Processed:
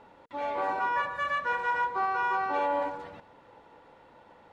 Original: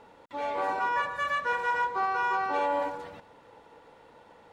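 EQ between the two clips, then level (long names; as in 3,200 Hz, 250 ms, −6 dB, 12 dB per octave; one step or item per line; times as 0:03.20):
high-shelf EQ 6,100 Hz −11.5 dB
notch filter 460 Hz, Q 12
0.0 dB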